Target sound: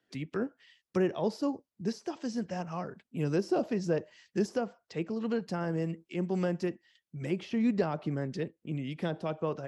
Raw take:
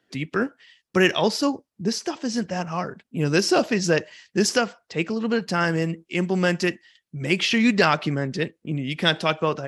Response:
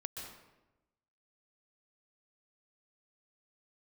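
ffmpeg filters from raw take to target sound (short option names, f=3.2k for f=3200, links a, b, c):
-filter_complex "[0:a]acrossover=split=670|930[a][b][c];[b]alimiter=level_in=3.5dB:limit=-24dB:level=0:latency=1,volume=-3.5dB[d];[c]acompressor=threshold=-38dB:ratio=10[e];[a][d][e]amix=inputs=3:normalize=0,volume=-8dB"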